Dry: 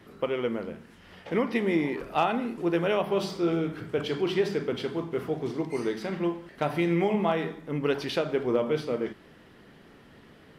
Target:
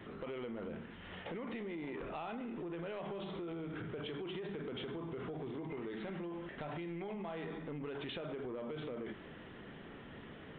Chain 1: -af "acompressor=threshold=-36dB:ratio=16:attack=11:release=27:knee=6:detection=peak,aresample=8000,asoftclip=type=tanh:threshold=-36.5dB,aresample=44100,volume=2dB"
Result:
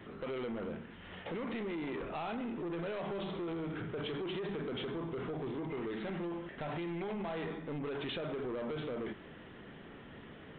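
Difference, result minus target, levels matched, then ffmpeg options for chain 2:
downward compressor: peak gain reduction −7 dB
-af "acompressor=threshold=-43.5dB:ratio=16:attack=11:release=27:knee=6:detection=peak,aresample=8000,asoftclip=type=tanh:threshold=-36.5dB,aresample=44100,volume=2dB"

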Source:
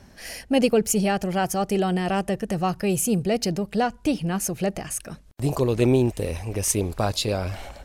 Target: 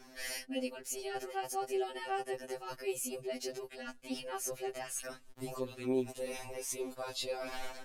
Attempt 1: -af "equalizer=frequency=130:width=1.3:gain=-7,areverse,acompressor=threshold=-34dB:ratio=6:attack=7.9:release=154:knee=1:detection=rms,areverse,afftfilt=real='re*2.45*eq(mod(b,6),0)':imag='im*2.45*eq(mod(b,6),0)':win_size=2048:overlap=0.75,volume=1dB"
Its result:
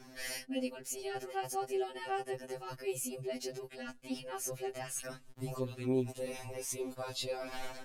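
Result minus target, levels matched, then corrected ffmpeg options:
125 Hz band +8.5 dB
-af "equalizer=frequency=130:width=1.3:gain=-18.5,areverse,acompressor=threshold=-34dB:ratio=6:attack=7.9:release=154:knee=1:detection=rms,areverse,afftfilt=real='re*2.45*eq(mod(b,6),0)':imag='im*2.45*eq(mod(b,6),0)':win_size=2048:overlap=0.75,volume=1dB"

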